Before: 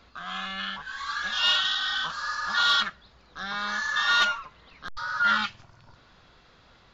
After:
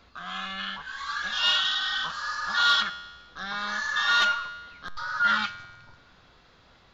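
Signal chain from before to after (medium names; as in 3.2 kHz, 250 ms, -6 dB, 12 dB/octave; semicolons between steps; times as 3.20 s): feedback comb 89 Hz, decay 1.3 s, harmonics all, mix 60%; trim +6.5 dB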